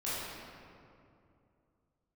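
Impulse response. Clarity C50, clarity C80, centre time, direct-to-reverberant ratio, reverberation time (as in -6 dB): -4.5 dB, -1.5 dB, 0.16 s, -11.0 dB, 2.6 s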